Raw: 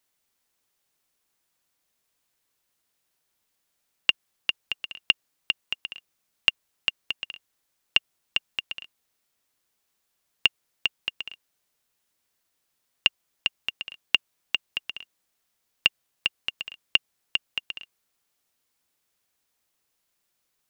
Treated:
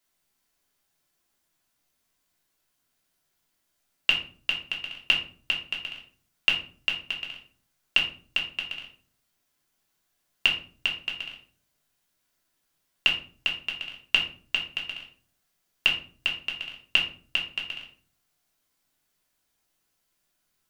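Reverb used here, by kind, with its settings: simulated room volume 340 m³, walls furnished, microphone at 3.1 m; trim -3.5 dB

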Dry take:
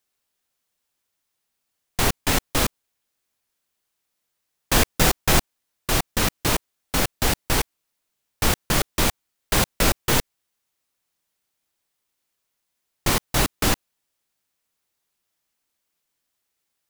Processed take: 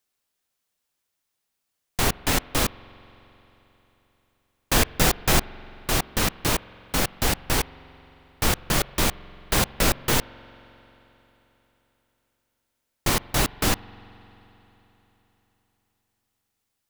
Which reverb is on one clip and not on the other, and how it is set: spring tank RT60 3.8 s, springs 44 ms, chirp 55 ms, DRR 19 dB; trim -1.5 dB

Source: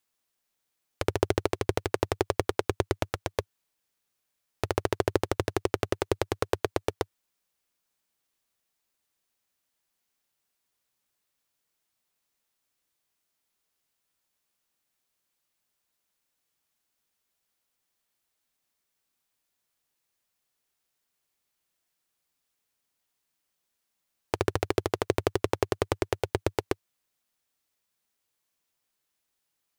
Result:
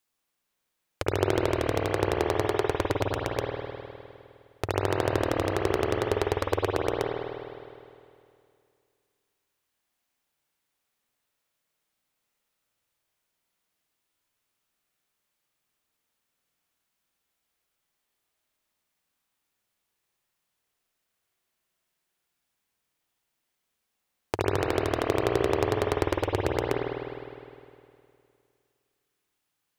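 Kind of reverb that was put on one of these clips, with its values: spring tank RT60 2.4 s, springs 51 ms, chirp 55 ms, DRR -1.5 dB; trim -1 dB

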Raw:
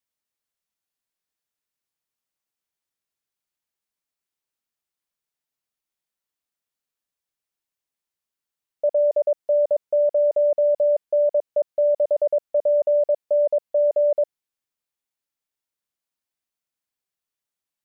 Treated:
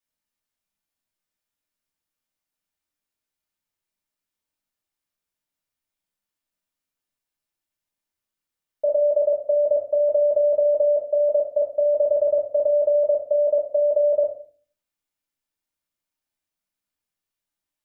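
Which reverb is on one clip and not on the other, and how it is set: simulated room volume 280 m³, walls furnished, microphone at 2.6 m; trim -3.5 dB

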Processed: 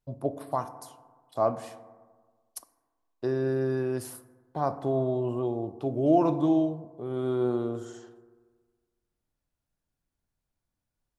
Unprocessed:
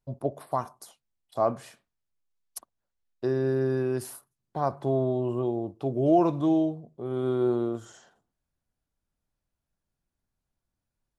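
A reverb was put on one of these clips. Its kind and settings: FDN reverb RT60 1.5 s, low-frequency decay 1×, high-frequency decay 0.3×, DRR 11.5 dB; trim -1 dB

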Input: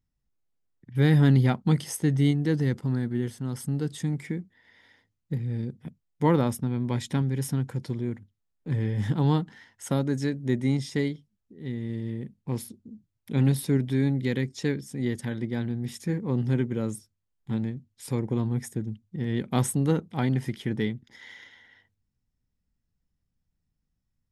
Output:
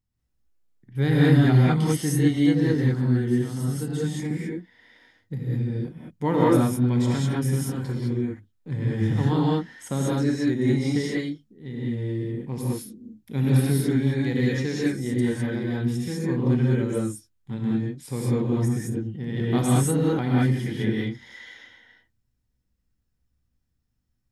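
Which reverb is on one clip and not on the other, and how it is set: gated-style reverb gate 230 ms rising, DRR -6 dB; trim -3 dB

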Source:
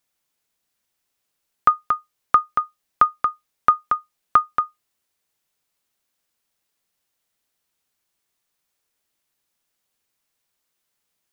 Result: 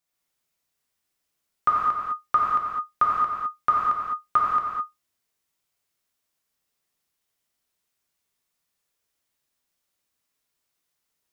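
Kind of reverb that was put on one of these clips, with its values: gated-style reverb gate 230 ms flat, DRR -5 dB; trim -8.5 dB

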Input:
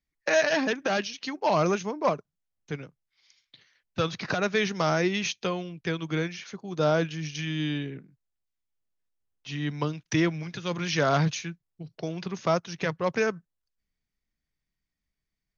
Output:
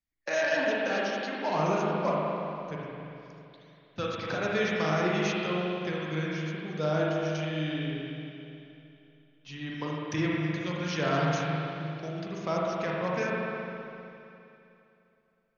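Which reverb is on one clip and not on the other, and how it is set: spring tank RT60 2.9 s, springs 39/51 ms, chirp 70 ms, DRR -4.5 dB; trim -7.5 dB

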